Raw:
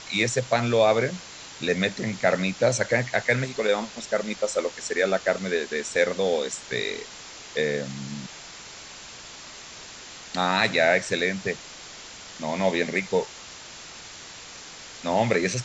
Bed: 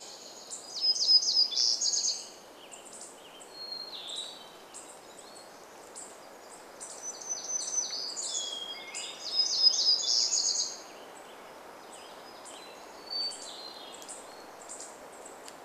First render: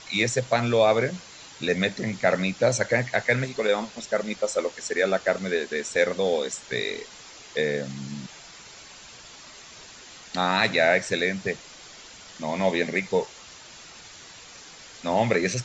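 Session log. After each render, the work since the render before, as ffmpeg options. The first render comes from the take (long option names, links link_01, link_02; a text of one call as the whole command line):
ffmpeg -i in.wav -af "afftdn=noise_reduction=6:noise_floor=-43" out.wav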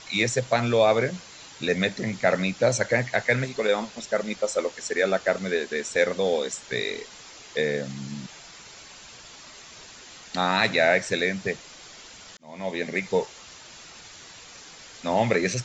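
ffmpeg -i in.wav -filter_complex "[0:a]asplit=2[link_01][link_02];[link_01]atrim=end=12.37,asetpts=PTS-STARTPTS,afade=type=out:start_time=12.366:duration=0.004:curve=hsin[link_03];[link_02]atrim=start=12.37,asetpts=PTS-STARTPTS,afade=type=in:duration=0.72[link_04];[link_03][link_04]concat=n=2:v=0:a=1" out.wav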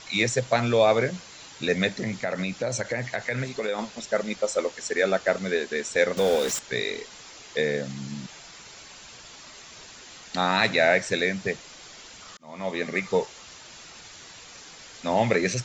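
ffmpeg -i in.wav -filter_complex "[0:a]asettb=1/sr,asplit=3[link_01][link_02][link_03];[link_01]atrim=end=1.954[link_04];[link_02]atrim=start=1.95:end=3.79,asetpts=PTS-STARTPTS,afade=type=in:duration=0.004:curve=qsin,afade=type=out:start_time=1.836:duration=0.004:curve=qsin,acompressor=threshold=-24dB:ratio=4:attack=3.2:release=140:knee=1:detection=peak[link_05];[link_03]atrim=start=3.786[link_06];[link_04][link_05]acrossfade=duration=0.004:curve1=hsin:curve2=qsin[link_07];[link_07][link_06]acrossfade=duration=0.004:curve1=qsin:curve2=hsin,asettb=1/sr,asplit=3[link_08][link_09][link_10];[link_08]atrim=end=6.174[link_11];[link_09]atrim=start=6.17:end=6.59,asetpts=PTS-STARTPTS,afade=type=in:duration=0.004:curve=qsin,afade=type=out:start_time=0.416:duration=0.004:curve=qsin,aeval=exprs='val(0)+0.5*0.0422*sgn(val(0))':channel_layout=same[link_12];[link_10]atrim=start=6.586[link_13];[link_11][link_12]acrossfade=duration=0.004:curve1=hsin:curve2=qsin[link_14];[link_14][link_13]acrossfade=duration=0.004:curve1=qsin:curve2=hsin,asettb=1/sr,asplit=3[link_15][link_16][link_17];[link_15]atrim=end=12.224[link_18];[link_16]atrim=start=12.22:end=13.17,asetpts=PTS-STARTPTS,afade=type=in:duration=0.004:curve=qsin,afade=type=out:start_time=0.946:duration=0.004:curve=qsin,equalizer=frequency=1200:width_type=o:width=0.21:gain=13[link_19];[link_17]atrim=start=13.166[link_20];[link_18][link_19]acrossfade=duration=0.004:curve1=hsin:curve2=qsin[link_21];[link_21][link_20]acrossfade=duration=0.004:curve1=qsin:curve2=hsin" out.wav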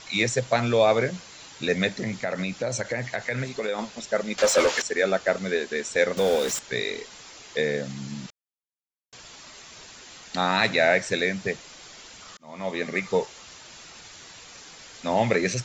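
ffmpeg -i in.wav -filter_complex "[0:a]asettb=1/sr,asplit=3[link_01][link_02][link_03];[link_01]atrim=end=4.384[link_04];[link_02]atrim=start=4.38:end=4.82,asetpts=PTS-STARTPTS,afade=type=in:duration=0.004:curve=qsin,afade=type=out:start_time=0.436:duration=0.004:curve=qsin,asplit=2[link_05][link_06];[link_06]highpass=frequency=720:poles=1,volume=25dB,asoftclip=type=tanh:threshold=-11dB[link_07];[link_05][link_07]amix=inputs=2:normalize=0,lowpass=frequency=4600:poles=1,volume=-6dB[link_08];[link_03]atrim=start=4.816[link_09];[link_04][link_08]acrossfade=duration=0.004:curve1=hsin:curve2=qsin[link_10];[link_10][link_09]acrossfade=duration=0.004:curve1=qsin:curve2=hsin,asettb=1/sr,asplit=3[link_11][link_12][link_13];[link_11]atrim=end=8.304[link_14];[link_12]atrim=start=8.3:end=9.13,asetpts=PTS-STARTPTS,afade=type=in:duration=0.004:curve=qsin,afade=type=out:start_time=0.826:duration=0.004:curve=qsin,acrusher=bits=3:mix=0:aa=0.5[link_15];[link_13]atrim=start=9.126[link_16];[link_14][link_15]acrossfade=duration=0.004:curve1=hsin:curve2=qsin[link_17];[link_17][link_16]acrossfade=duration=0.004:curve1=qsin:curve2=hsin" out.wav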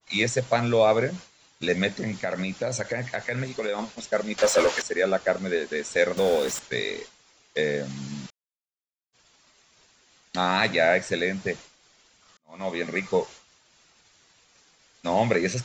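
ffmpeg -i in.wav -af "agate=range=-33dB:threshold=-35dB:ratio=3:detection=peak,adynamicequalizer=threshold=0.0178:dfrequency=1700:dqfactor=0.7:tfrequency=1700:tqfactor=0.7:attack=5:release=100:ratio=0.375:range=2:mode=cutabove:tftype=highshelf" out.wav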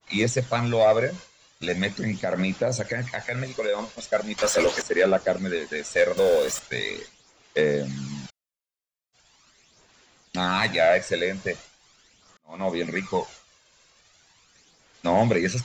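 ffmpeg -i in.wav -af "aphaser=in_gain=1:out_gain=1:delay=1.9:decay=0.45:speed=0.4:type=sinusoidal,asoftclip=type=tanh:threshold=-10dB" out.wav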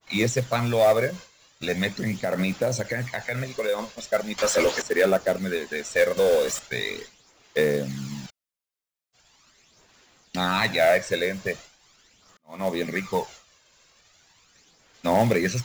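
ffmpeg -i in.wav -af "acrusher=bits=5:mode=log:mix=0:aa=0.000001" out.wav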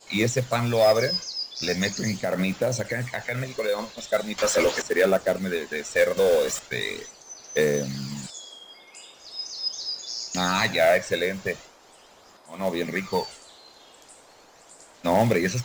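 ffmpeg -i in.wav -i bed.wav -filter_complex "[1:a]volume=-6.5dB[link_01];[0:a][link_01]amix=inputs=2:normalize=0" out.wav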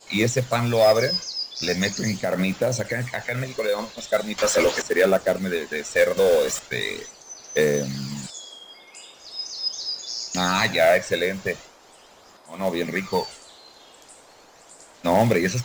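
ffmpeg -i in.wav -af "volume=2dB" out.wav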